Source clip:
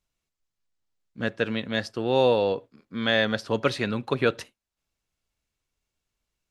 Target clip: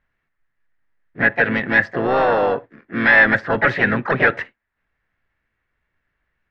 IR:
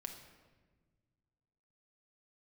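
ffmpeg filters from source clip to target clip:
-filter_complex "[0:a]asplit=3[s0][s1][s2];[s1]asetrate=52444,aresample=44100,atempo=0.840896,volume=0.447[s3];[s2]asetrate=66075,aresample=44100,atempo=0.66742,volume=0.447[s4];[s0][s3][s4]amix=inputs=3:normalize=0,apsyclip=9.44,lowpass=f=1800:t=q:w=5.1,volume=0.224"

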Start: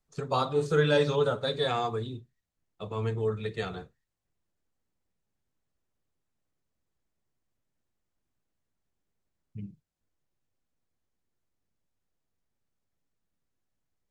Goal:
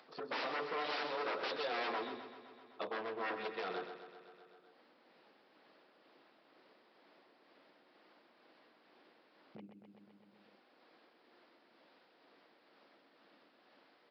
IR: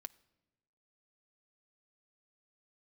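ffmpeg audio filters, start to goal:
-af "alimiter=limit=0.126:level=0:latency=1:release=414,tremolo=f=2.1:d=0.57,aresample=11025,aeval=exprs='0.02*(abs(mod(val(0)/0.02+3,4)-2)-1)':c=same,aresample=44100,acompressor=threshold=0.00355:ratio=2,highpass=f=300:w=0.5412,highpass=f=300:w=1.3066,highshelf=f=3300:g=-8,bandreject=f=410:w=12,aecho=1:1:128|256|384|512|640|768|896:0.376|0.207|0.114|0.0625|0.0344|0.0189|0.0104,acompressor=mode=upward:threshold=0.00126:ratio=2.5,volume=2.82"

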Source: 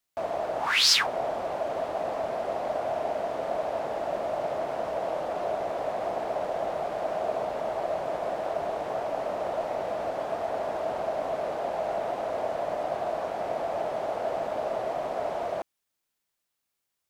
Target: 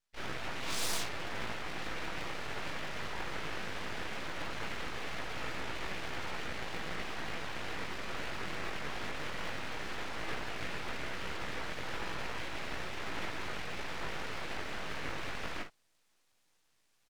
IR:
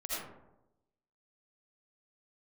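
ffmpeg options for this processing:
-filter_complex "[0:a]bandreject=f=410:w=12,afftfilt=real='re*lt(hypot(re,im),0.0891)':imag='im*lt(hypot(re,im),0.0891)':win_size=1024:overlap=0.75,aecho=1:1:6.2:0.36,areverse,acompressor=mode=upward:threshold=0.00158:ratio=2.5,areverse,asplit=2[s0][s1];[s1]asetrate=66075,aresample=44100,atempo=0.66742,volume=0.562[s2];[s0][s2]amix=inputs=2:normalize=0,highpass=300,lowpass=5100,flanger=delay=15.5:depth=5.1:speed=0.17,asplit=2[s3][s4];[s4]aecho=0:1:18|52:0.376|0.335[s5];[s3][s5]amix=inputs=2:normalize=0,aeval=exprs='abs(val(0))':c=same,volume=1.5"

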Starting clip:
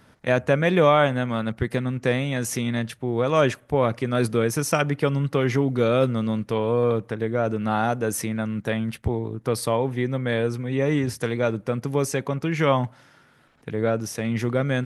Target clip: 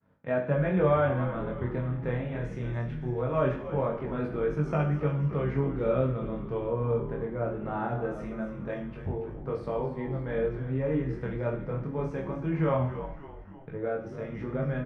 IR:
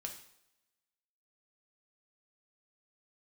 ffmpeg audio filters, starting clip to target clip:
-filter_complex "[0:a]agate=range=0.0224:threshold=0.00316:ratio=3:detection=peak,lowpass=1500,asplit=7[s0][s1][s2][s3][s4][s5][s6];[s1]adelay=281,afreqshift=-84,volume=0.282[s7];[s2]adelay=562,afreqshift=-168,volume=0.151[s8];[s3]adelay=843,afreqshift=-252,volume=0.0822[s9];[s4]adelay=1124,afreqshift=-336,volume=0.0442[s10];[s5]adelay=1405,afreqshift=-420,volume=0.024[s11];[s6]adelay=1686,afreqshift=-504,volume=0.0129[s12];[s0][s7][s8][s9][s10][s11][s12]amix=inputs=7:normalize=0[s13];[1:a]atrim=start_sample=2205[s14];[s13][s14]afir=irnorm=-1:irlink=0,flanger=delay=20:depth=5.8:speed=0.21,volume=0.794"

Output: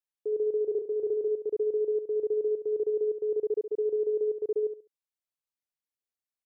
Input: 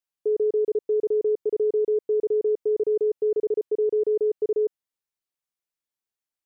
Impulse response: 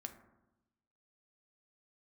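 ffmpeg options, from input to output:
-filter_complex "[0:a]asplit=3[s0][s1][s2];[s0]afade=t=out:st=0.62:d=0.02[s3];[s1]asplit=2[s4][s5];[s5]adelay=29,volume=0.473[s6];[s4][s6]amix=inputs=2:normalize=0,afade=t=in:st=0.62:d=0.02,afade=t=out:st=1.28:d=0.02[s7];[s2]afade=t=in:st=1.28:d=0.02[s8];[s3][s7][s8]amix=inputs=3:normalize=0,aecho=1:1:68|136|204:0.355|0.0887|0.0222,volume=0.422"

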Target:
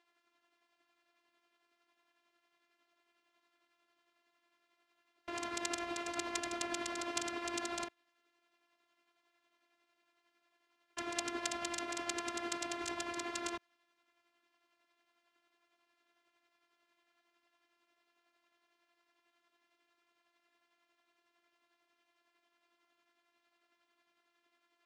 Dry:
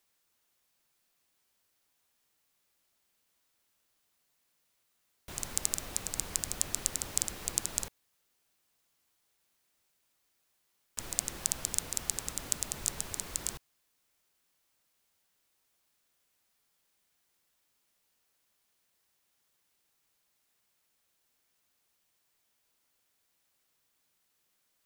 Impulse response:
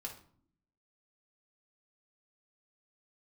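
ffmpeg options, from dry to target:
-af "tremolo=f=11:d=0.45,afftfilt=real='hypot(re,im)*cos(PI*b)':imag='0':win_size=512:overlap=0.75,highpass=180,lowpass=2500,volume=4.47"

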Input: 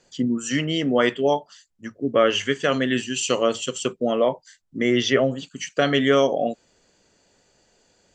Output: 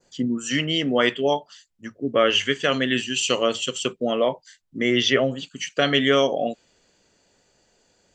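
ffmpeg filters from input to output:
-af "adynamicequalizer=threshold=0.01:dfrequency=3000:dqfactor=1:tfrequency=3000:tqfactor=1:attack=5:release=100:ratio=0.375:range=3:mode=boostabove:tftype=bell,volume=0.841"

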